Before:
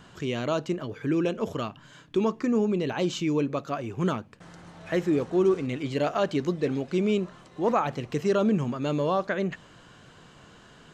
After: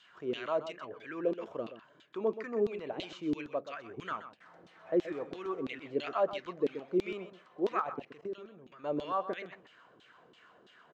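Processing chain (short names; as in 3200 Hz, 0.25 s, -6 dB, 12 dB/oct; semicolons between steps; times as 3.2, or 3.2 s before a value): LFO band-pass saw down 3 Hz 310–3700 Hz; 7.81–8.84 level quantiser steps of 18 dB; notch 850 Hz, Q 16; on a send: echo 0.127 s -12 dB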